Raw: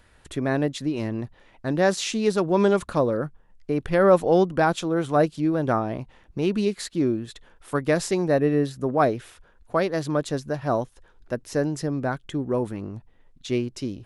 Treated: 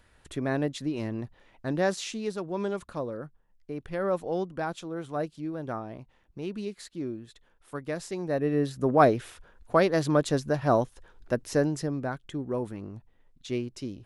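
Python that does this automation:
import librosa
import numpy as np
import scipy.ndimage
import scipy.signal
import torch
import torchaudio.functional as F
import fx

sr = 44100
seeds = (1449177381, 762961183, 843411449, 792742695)

y = fx.gain(x, sr, db=fx.line((1.75, -4.5), (2.39, -11.5), (8.08, -11.5), (8.92, 1.0), (11.46, 1.0), (12.09, -6.0)))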